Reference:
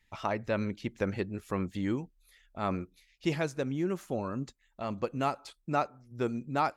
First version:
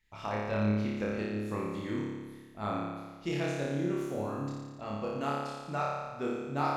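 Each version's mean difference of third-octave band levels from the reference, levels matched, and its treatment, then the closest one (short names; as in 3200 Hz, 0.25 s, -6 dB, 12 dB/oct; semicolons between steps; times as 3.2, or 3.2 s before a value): 9.5 dB: flutter echo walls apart 4.9 m, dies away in 1.4 s; gain -6.5 dB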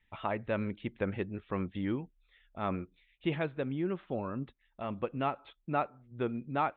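3.0 dB: steep low-pass 3700 Hz 96 dB/oct; gain -2 dB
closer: second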